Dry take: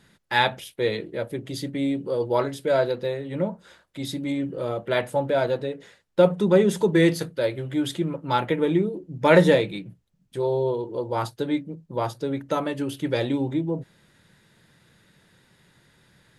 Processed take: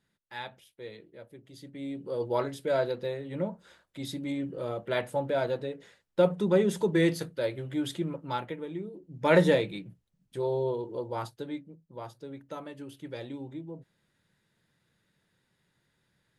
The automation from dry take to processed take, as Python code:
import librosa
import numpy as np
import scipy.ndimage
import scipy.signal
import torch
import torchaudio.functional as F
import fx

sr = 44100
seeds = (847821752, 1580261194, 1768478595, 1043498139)

y = fx.gain(x, sr, db=fx.line((1.5, -19.0), (2.22, -6.0), (8.18, -6.0), (8.69, -17.0), (9.35, -5.5), (10.93, -5.5), (11.82, -15.0)))